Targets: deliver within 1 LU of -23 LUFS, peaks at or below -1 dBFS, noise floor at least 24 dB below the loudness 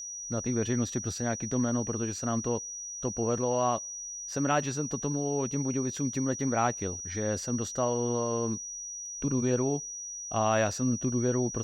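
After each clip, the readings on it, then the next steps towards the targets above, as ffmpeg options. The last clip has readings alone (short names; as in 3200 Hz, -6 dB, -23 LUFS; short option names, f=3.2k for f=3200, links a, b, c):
steady tone 5800 Hz; tone level -37 dBFS; loudness -30.5 LUFS; peak -14.5 dBFS; loudness target -23.0 LUFS
-> -af "bandreject=f=5.8k:w=30"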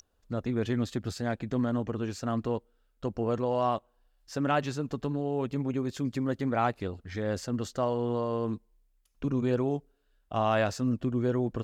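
steady tone none; loudness -31.0 LUFS; peak -15.0 dBFS; loudness target -23.0 LUFS
-> -af "volume=8dB"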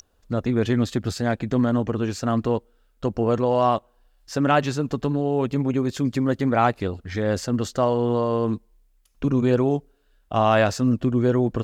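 loudness -23.0 LUFS; peak -7.0 dBFS; noise floor -63 dBFS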